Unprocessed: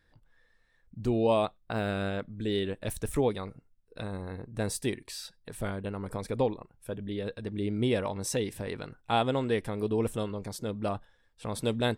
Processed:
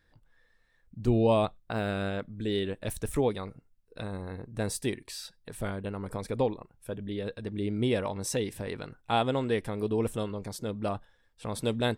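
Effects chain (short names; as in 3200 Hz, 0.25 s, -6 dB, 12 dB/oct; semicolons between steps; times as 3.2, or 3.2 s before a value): 1.07–1.6 low shelf 150 Hz +10 dB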